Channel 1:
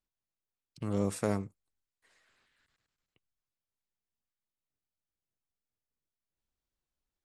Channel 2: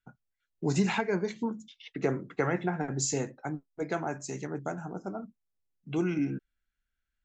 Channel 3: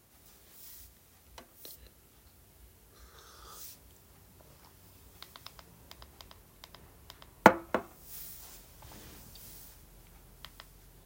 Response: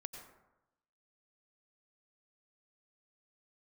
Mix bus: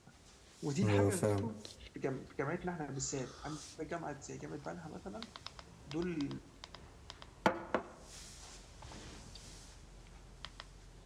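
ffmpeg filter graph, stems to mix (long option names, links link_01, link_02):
-filter_complex "[0:a]equalizer=frequency=2500:width=0.34:gain=-6,aecho=1:1:7.4:0.71,volume=0dB,asplit=2[link_01][link_02];[link_02]volume=-9.5dB[link_03];[1:a]volume=-11dB,asplit=2[link_04][link_05];[link_05]volume=-10dB[link_06];[2:a]lowpass=frequency=7900:width=0.5412,lowpass=frequency=7900:width=1.3066,asoftclip=type=hard:threshold=-10.5dB,volume=-0.5dB,asplit=2[link_07][link_08];[link_08]volume=-11.5dB[link_09];[3:a]atrim=start_sample=2205[link_10];[link_03][link_06][link_09]amix=inputs=3:normalize=0[link_11];[link_11][link_10]afir=irnorm=-1:irlink=0[link_12];[link_01][link_04][link_07][link_12]amix=inputs=4:normalize=0,alimiter=limit=-20dB:level=0:latency=1:release=347"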